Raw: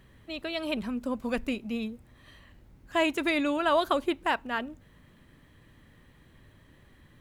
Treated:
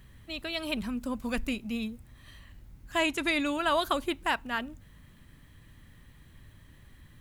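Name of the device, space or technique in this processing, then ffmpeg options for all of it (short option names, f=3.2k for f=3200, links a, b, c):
smiley-face EQ: -filter_complex "[0:a]asettb=1/sr,asplit=3[a][b][c];[a]atrim=end=3.004[d];[b]atrim=start=3:end=3.4,asetpts=PTS-STARTPTS,afade=t=in:d=0.004:c=qsin,afade=t=out:st=0.396:d=0.004:c=qsin,lowpass=11k[e];[c]atrim=start=3.396[f];[d][e]acrossfade=d=0.004:c1=hsin:c2=qsin[g];[g][f]acrossfade=d=0.004:c1=qsin:c2=hsin,lowshelf=f=120:g=7,equalizer=f=460:t=o:w=1.6:g=-5.5,highshelf=f=5.6k:g=7.5"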